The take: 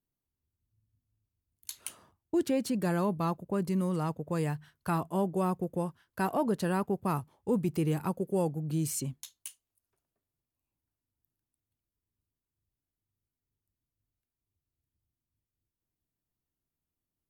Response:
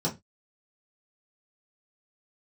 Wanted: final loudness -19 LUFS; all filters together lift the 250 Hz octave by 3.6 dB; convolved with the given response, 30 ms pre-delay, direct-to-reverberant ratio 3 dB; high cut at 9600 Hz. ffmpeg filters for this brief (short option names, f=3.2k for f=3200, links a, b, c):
-filter_complex "[0:a]lowpass=9.6k,equalizer=f=250:t=o:g=5.5,asplit=2[a][b];[1:a]atrim=start_sample=2205,adelay=30[c];[b][c]afir=irnorm=-1:irlink=0,volume=-11dB[d];[a][d]amix=inputs=2:normalize=0,volume=3dB"